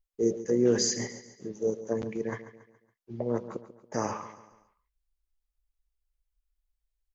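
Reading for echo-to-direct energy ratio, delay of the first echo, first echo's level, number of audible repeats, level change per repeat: −13.0 dB, 140 ms, −14.0 dB, 3, −7.0 dB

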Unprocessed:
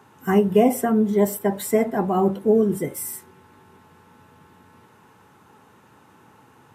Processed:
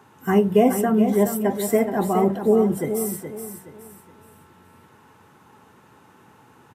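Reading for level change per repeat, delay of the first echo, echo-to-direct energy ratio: −10.0 dB, 421 ms, −8.0 dB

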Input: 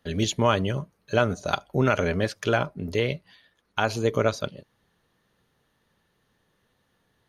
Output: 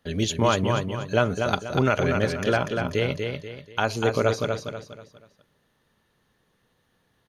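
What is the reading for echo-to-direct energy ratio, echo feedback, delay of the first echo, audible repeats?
−4.5 dB, 36%, 242 ms, 4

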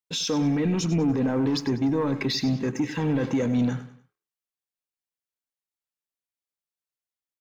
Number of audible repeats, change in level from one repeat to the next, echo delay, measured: 3, −9.0 dB, 97 ms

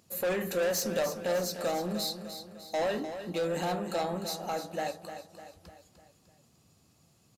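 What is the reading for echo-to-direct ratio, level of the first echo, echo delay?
−9.0 dB, −10.0 dB, 301 ms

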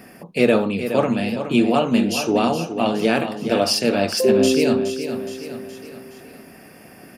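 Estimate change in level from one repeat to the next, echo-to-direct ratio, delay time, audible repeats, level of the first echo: −6.0 dB, −8.0 dB, 419 ms, 4, −9.5 dB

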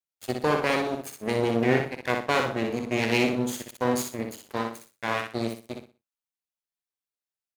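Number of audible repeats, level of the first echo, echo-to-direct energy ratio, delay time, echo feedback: 3, −5.0 dB, −4.5 dB, 61 ms, 27%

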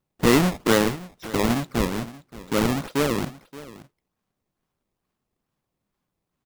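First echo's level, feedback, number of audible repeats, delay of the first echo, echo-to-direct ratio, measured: −18.0 dB, repeats not evenly spaced, 1, 575 ms, −18.0 dB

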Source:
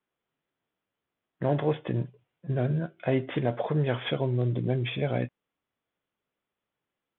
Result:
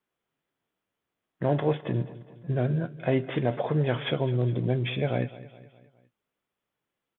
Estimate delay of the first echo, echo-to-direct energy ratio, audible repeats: 207 ms, −16.0 dB, 3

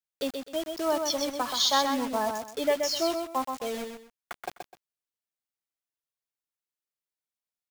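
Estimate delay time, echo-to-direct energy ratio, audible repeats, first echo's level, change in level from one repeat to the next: 127 ms, −5.0 dB, 2, −5.5 dB, −12.0 dB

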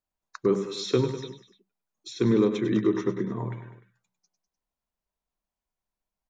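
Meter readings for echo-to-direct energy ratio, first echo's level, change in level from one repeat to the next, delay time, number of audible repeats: −9.0 dB, −10.5 dB, −4.5 dB, 100 ms, 3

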